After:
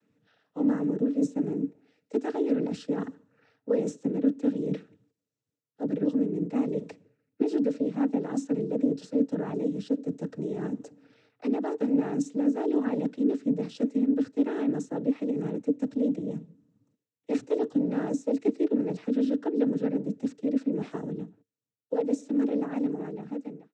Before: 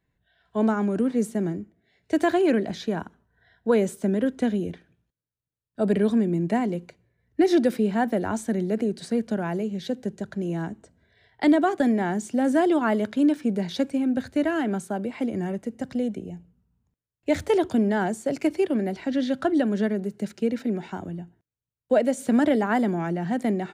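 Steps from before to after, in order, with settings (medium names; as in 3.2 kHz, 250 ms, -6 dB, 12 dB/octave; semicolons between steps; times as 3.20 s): fade out at the end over 4.08 s; treble shelf 5.3 kHz +6 dB; reverse; compression 5:1, threshold -37 dBFS, peak gain reduction 19.5 dB; reverse; noise-vocoded speech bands 12; small resonant body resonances 280/450 Hz, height 17 dB, ringing for 55 ms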